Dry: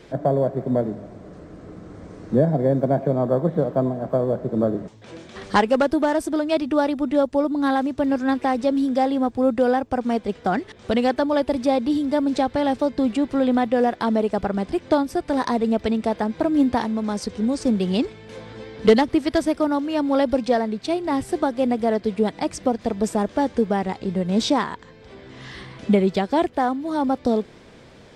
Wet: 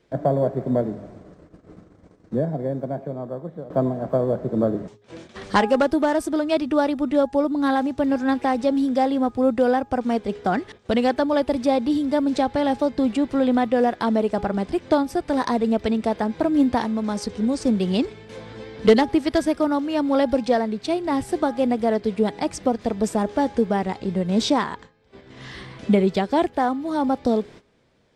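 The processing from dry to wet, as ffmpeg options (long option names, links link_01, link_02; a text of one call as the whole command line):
ffmpeg -i in.wav -filter_complex "[0:a]asplit=2[link_01][link_02];[link_01]atrim=end=3.7,asetpts=PTS-STARTPTS,afade=type=out:start_time=0.7:duration=3:silence=0.177828[link_03];[link_02]atrim=start=3.7,asetpts=PTS-STARTPTS,afade=type=in:duration=0.004:curve=hsin:silence=0.177828[link_04];[link_03][link_04]concat=n=2:v=0:a=1,agate=range=-16dB:threshold=-41dB:ratio=16:detection=peak,bandreject=frequency=412.9:width_type=h:width=4,bandreject=frequency=825.8:width_type=h:width=4,bandreject=frequency=1238.7:width_type=h:width=4,bandreject=frequency=1651.6:width_type=h:width=4" out.wav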